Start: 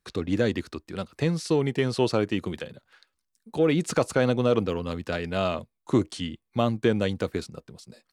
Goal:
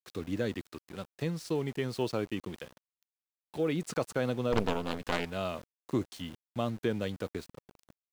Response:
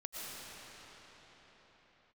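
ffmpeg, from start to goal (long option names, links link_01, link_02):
-filter_complex "[0:a]asplit=3[link_01][link_02][link_03];[link_01]afade=type=out:start_time=4.52:duration=0.02[link_04];[link_02]aeval=exprs='0.335*(cos(1*acos(clip(val(0)/0.335,-1,1)))-cos(1*PI/2))+0.0473*(cos(5*acos(clip(val(0)/0.335,-1,1)))-cos(5*PI/2))+0.15*(cos(6*acos(clip(val(0)/0.335,-1,1)))-cos(6*PI/2))':channel_layout=same,afade=type=in:start_time=4.52:duration=0.02,afade=type=out:start_time=5.24:duration=0.02[link_05];[link_03]afade=type=in:start_time=5.24:duration=0.02[link_06];[link_04][link_05][link_06]amix=inputs=3:normalize=0,aeval=exprs='val(0)*gte(abs(val(0)),0.0126)':channel_layout=same,volume=-8.5dB"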